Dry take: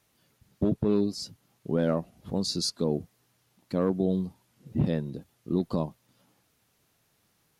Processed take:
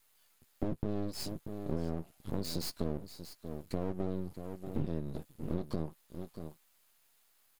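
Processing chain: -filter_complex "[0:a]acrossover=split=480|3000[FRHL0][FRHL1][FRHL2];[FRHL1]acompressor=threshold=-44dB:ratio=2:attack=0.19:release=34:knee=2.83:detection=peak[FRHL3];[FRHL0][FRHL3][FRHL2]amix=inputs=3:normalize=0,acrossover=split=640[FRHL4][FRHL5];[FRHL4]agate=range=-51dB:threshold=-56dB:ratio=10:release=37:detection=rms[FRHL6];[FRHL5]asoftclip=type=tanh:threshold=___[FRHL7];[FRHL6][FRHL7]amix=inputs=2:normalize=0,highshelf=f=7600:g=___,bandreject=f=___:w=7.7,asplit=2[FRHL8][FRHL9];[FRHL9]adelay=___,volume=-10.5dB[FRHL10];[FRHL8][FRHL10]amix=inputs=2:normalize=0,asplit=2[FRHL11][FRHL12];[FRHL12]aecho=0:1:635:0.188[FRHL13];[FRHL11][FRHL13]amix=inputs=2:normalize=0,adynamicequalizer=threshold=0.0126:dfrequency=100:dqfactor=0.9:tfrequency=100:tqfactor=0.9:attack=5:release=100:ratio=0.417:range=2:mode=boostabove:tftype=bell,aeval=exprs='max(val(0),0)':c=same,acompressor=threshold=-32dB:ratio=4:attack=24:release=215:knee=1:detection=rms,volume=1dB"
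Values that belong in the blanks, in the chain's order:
-33dB, 9, 5800, 13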